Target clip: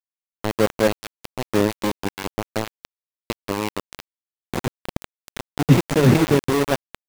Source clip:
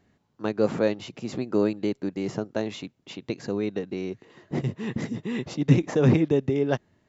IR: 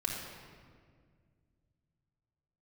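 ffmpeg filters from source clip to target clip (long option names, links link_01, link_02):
-af "aecho=1:1:210|420|630:0.282|0.0817|0.0237,aeval=exprs='val(0)*gte(abs(val(0)),0.0841)':channel_layout=same,volume=4.5dB"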